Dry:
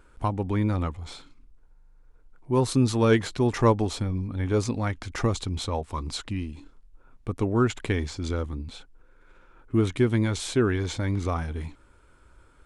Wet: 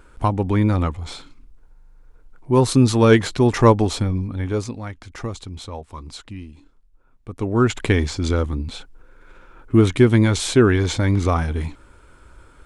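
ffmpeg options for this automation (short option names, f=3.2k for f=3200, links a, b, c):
-af "volume=19.5dB,afade=t=out:st=4.04:d=0.74:silence=0.281838,afade=t=in:st=7.29:d=0.55:silence=0.237137"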